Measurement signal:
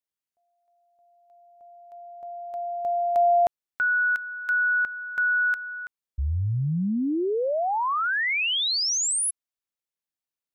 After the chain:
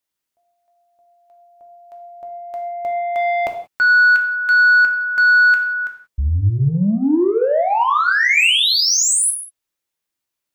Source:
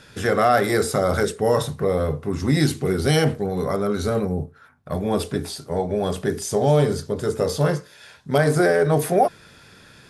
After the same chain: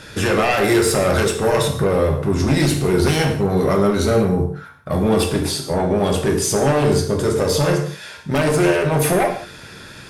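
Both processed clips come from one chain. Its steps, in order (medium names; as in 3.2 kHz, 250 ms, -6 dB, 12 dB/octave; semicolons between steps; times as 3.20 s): one-sided wavefolder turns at -14 dBFS; dynamic bell 2.6 kHz, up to +6 dB, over -48 dBFS, Q 5.1; peak limiter -16.5 dBFS; saturation -20.5 dBFS; gated-style reverb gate 210 ms falling, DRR 2.5 dB; trim +8.5 dB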